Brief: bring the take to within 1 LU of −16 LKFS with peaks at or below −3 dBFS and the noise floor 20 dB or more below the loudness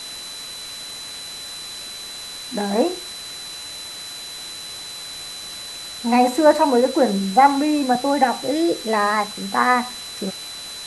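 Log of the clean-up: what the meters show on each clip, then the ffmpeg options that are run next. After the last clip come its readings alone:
interfering tone 4,000 Hz; level of the tone −33 dBFS; background noise floor −34 dBFS; target noise floor −42 dBFS; integrated loudness −22.0 LKFS; sample peak −2.5 dBFS; target loudness −16.0 LKFS
→ -af "bandreject=frequency=4000:width=30"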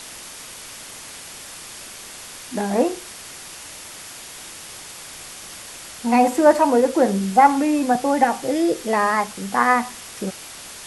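interfering tone none found; background noise floor −38 dBFS; target noise floor −40 dBFS
→ -af "afftdn=noise_reduction=6:noise_floor=-38"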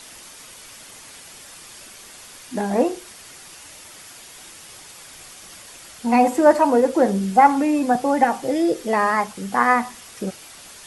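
background noise floor −43 dBFS; integrated loudness −19.5 LKFS; sample peak −3.0 dBFS; target loudness −16.0 LKFS
→ -af "volume=3.5dB,alimiter=limit=-3dB:level=0:latency=1"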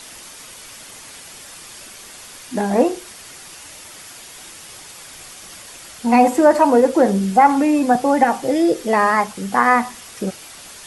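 integrated loudness −16.5 LKFS; sample peak −3.0 dBFS; background noise floor −39 dBFS

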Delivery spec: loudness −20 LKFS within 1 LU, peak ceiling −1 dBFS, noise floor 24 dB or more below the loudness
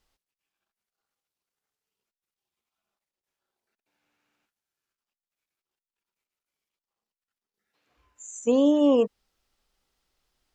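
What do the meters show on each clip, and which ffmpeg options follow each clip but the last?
integrated loudness −22.5 LKFS; sample peak −11.0 dBFS; target loudness −20.0 LKFS
→ -af "volume=2.5dB"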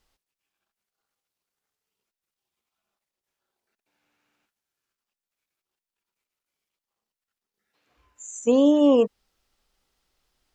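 integrated loudness −20.0 LKFS; sample peak −8.5 dBFS; background noise floor −91 dBFS

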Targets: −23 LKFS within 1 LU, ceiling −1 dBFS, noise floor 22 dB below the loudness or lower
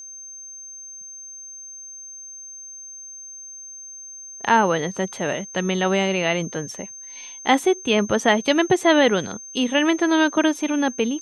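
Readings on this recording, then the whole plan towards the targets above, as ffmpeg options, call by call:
interfering tone 6,300 Hz; level of the tone −36 dBFS; integrated loudness −20.5 LKFS; sample peak −4.5 dBFS; target loudness −23.0 LKFS
→ -af "bandreject=frequency=6300:width=30"
-af "volume=-2.5dB"

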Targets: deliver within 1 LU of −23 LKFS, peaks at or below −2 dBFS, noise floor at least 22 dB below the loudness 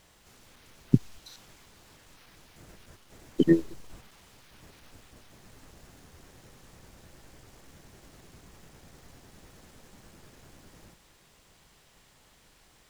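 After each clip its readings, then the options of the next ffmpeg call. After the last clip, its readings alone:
integrated loudness −26.5 LKFS; sample peak −4.5 dBFS; target loudness −23.0 LKFS
→ -af "volume=3.5dB,alimiter=limit=-2dB:level=0:latency=1"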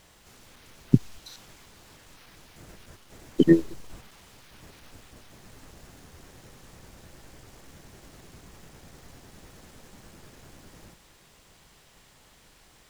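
integrated loudness −23.0 LKFS; sample peak −2.0 dBFS; background noise floor −58 dBFS

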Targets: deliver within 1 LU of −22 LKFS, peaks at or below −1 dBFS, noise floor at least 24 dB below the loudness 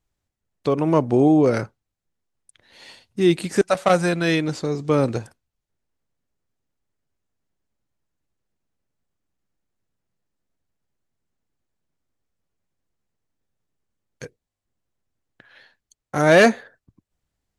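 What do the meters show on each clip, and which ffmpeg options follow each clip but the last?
integrated loudness −19.5 LKFS; sample peak −3.0 dBFS; target loudness −22.0 LKFS
→ -af "volume=-2.5dB"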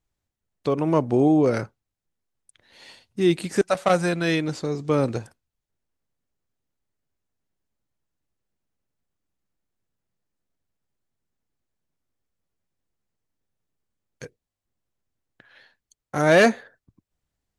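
integrated loudness −22.0 LKFS; sample peak −5.5 dBFS; background noise floor −86 dBFS

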